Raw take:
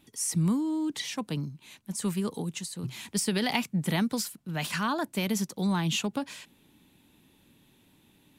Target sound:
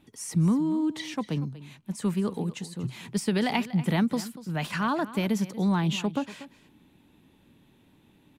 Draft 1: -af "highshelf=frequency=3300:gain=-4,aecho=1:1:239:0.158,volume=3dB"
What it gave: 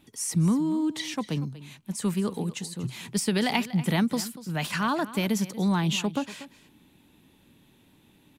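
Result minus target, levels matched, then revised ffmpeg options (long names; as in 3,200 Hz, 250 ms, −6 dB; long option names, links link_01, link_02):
8,000 Hz band +5.5 dB
-af "highshelf=frequency=3300:gain=-11.5,aecho=1:1:239:0.158,volume=3dB"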